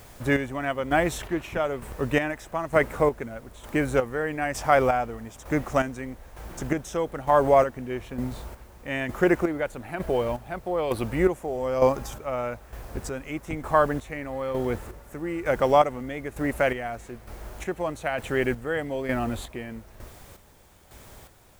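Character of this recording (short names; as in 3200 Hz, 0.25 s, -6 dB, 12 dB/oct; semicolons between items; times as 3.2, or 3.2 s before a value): a quantiser's noise floor 10-bit, dither triangular; chopped level 1.1 Hz, depth 60%, duty 40%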